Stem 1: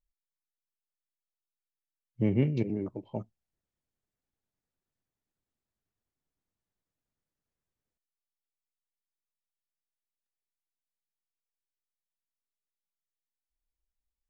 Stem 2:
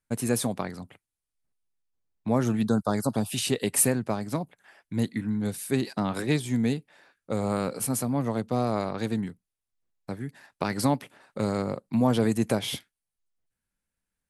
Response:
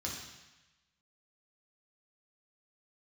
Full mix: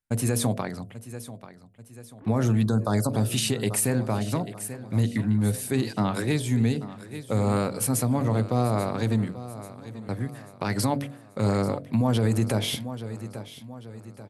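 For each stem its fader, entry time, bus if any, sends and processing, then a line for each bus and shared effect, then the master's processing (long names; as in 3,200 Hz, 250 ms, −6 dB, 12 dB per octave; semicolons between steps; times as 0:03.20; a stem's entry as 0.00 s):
−15.0 dB, 0.00 s, no send, no echo send, three sine waves on the formant tracks; soft clipping −30.5 dBFS, distortion −9 dB
+3.0 dB, 0.00 s, no send, echo send −16 dB, noise gate −48 dBFS, range −8 dB; hum removal 47.05 Hz, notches 15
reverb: not used
echo: repeating echo 837 ms, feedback 45%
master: parametric band 110 Hz +9.5 dB 0.3 octaves; brickwall limiter −14.5 dBFS, peak gain reduction 9.5 dB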